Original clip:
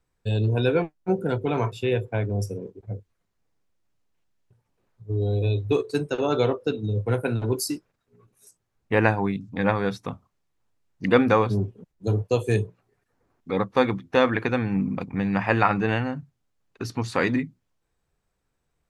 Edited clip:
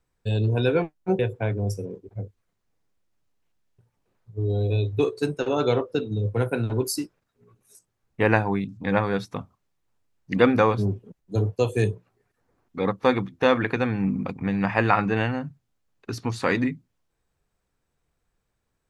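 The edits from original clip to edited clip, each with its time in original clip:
1.19–1.91 cut

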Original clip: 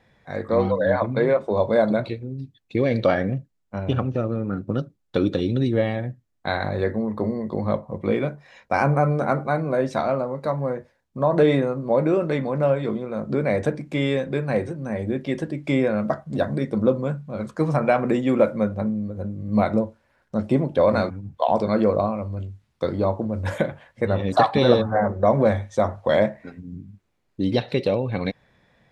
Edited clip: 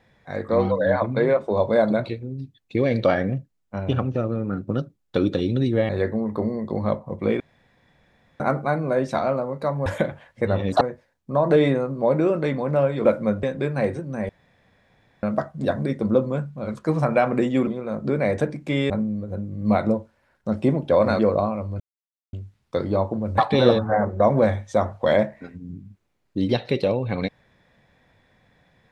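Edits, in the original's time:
5.89–6.71 cut
8.22–9.22 room tone
12.92–14.15 swap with 18.39–18.77
15.01–15.95 room tone
21.06–21.8 cut
22.41 insert silence 0.53 s
23.46–24.41 move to 10.68

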